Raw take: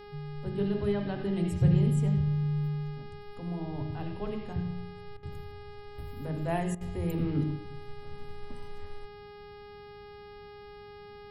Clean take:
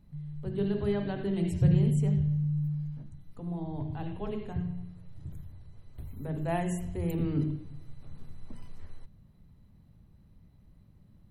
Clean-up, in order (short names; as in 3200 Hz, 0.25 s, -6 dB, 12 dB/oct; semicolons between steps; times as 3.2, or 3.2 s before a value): de-hum 411.8 Hz, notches 13; interpolate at 5.17/6.75, 58 ms